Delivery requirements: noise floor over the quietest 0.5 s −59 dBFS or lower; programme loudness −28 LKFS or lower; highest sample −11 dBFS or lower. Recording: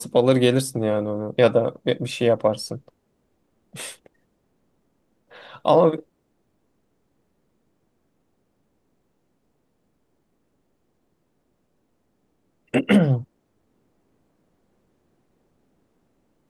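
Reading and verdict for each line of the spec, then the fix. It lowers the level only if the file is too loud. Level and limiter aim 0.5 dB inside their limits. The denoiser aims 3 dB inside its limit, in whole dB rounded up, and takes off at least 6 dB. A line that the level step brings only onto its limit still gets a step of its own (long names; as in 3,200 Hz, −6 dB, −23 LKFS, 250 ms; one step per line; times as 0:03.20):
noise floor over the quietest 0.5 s −69 dBFS: in spec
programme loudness −21.0 LKFS: out of spec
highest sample −5.5 dBFS: out of spec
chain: level −7.5 dB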